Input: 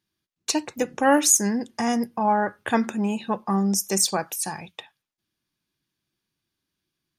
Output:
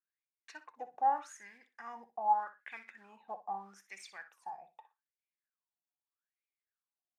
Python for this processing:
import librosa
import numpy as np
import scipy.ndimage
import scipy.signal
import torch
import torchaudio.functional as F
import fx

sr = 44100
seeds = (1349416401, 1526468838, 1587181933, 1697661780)

y = fx.block_float(x, sr, bits=5)
y = fx.wah_lfo(y, sr, hz=0.81, low_hz=710.0, high_hz=2300.0, q=12.0)
y = fx.echo_feedback(y, sr, ms=61, feedback_pct=17, wet_db=-13.5)
y = y * librosa.db_to_amplitude(-2.5)